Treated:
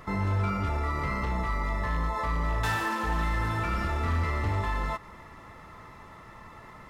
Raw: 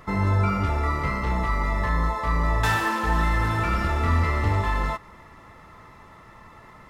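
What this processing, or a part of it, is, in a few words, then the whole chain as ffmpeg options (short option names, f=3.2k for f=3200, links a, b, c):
clipper into limiter: -af "asoftclip=type=hard:threshold=-16dB,alimiter=limit=-21.5dB:level=0:latency=1:release=112"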